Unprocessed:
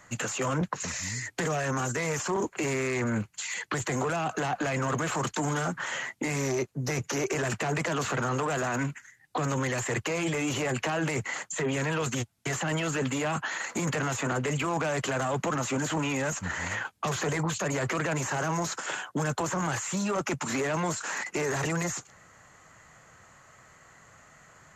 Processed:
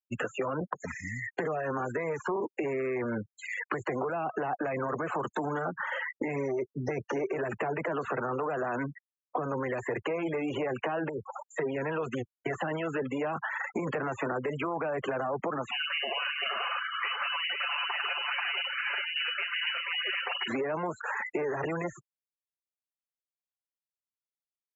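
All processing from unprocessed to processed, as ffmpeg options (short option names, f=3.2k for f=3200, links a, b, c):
-filter_complex "[0:a]asettb=1/sr,asplit=3[a][b][c];[a]atrim=end=11.094[d];[b]atrim=start=11.09:end=11.53,asetpts=PTS-STARTPTS,afade=t=in:d=0.004:c=qsin,afade=t=out:st=0.436:d=0.004:c=qsin,asuperstop=centerf=2800:order=8:qfactor=0.7,acompressor=threshold=-34dB:ratio=3:attack=3.2:release=140:knee=1:detection=peak[e];[c]atrim=start=11.526[f];[d][e]acrossfade=d=0.004:c1=hsin:c2=qsin[g];[g][f]acrossfade=d=0.004:c1=qsin:c2=hsin,asettb=1/sr,asplit=3[h][i][j];[h]atrim=end=15.714[k];[i]atrim=start=15.71:end=20.48,asetpts=PTS-STARTPTS,afade=t=in:d=0.004:c=qsin,afade=t=out:st=4.766:d=0.004:c=qsin,aecho=1:1:6.3:0.38,atrim=end_sample=210357,aecho=1:1:47|388|485:0.335|0.501|0.668,atrim=end_sample=210357,lowpass=f=2.6k:t=q:w=0.5098,lowpass=f=2.6k:t=q:w=0.6013,lowpass=f=2.6k:t=q:w=0.9,lowpass=f=2.6k:t=q:w=2.563,afreqshift=-3100[l];[j]atrim=start=20.476[m];[k][l]acrossfade=d=0.004:c1=hsin:c2=qsin[n];[n][m]acrossfade=d=0.004:c1=qsin:c2=hsin,afftfilt=real='re*gte(hypot(re,im),0.0316)':imag='im*gte(hypot(re,im),0.0316)':win_size=1024:overlap=0.75,firequalizer=gain_entry='entry(120,0);entry(390,11);entry(6300,-13)':delay=0.05:min_phase=1,acompressor=threshold=-26dB:ratio=6,volume=-3dB"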